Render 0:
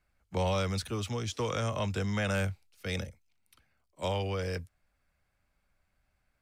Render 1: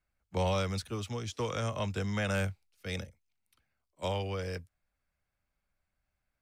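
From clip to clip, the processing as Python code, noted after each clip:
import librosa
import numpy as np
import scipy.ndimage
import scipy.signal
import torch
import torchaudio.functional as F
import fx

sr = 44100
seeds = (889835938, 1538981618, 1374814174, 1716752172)

y = fx.upward_expand(x, sr, threshold_db=-43.0, expansion=1.5)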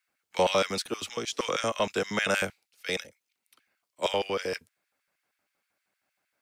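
y = fx.filter_lfo_highpass(x, sr, shape='square', hz=6.4, low_hz=310.0, high_hz=1900.0, q=1.0)
y = F.gain(torch.from_numpy(y), 8.5).numpy()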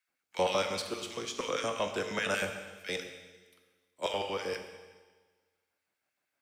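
y = fx.comb_fb(x, sr, f0_hz=89.0, decay_s=1.7, harmonics='all', damping=0.0, mix_pct=50)
y = fx.rev_plate(y, sr, seeds[0], rt60_s=1.3, hf_ratio=1.0, predelay_ms=0, drr_db=5.0)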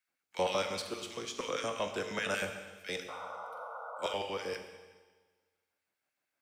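y = fx.spec_paint(x, sr, seeds[1], shape='noise', start_s=3.08, length_s=1.06, low_hz=450.0, high_hz=1500.0, level_db=-41.0)
y = F.gain(torch.from_numpy(y), -2.5).numpy()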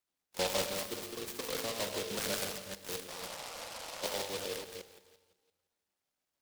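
y = fx.reverse_delay(x, sr, ms=172, wet_db=-6.0)
y = fx.noise_mod_delay(y, sr, seeds[2], noise_hz=3400.0, depth_ms=0.17)
y = F.gain(torch.from_numpy(y), -2.0).numpy()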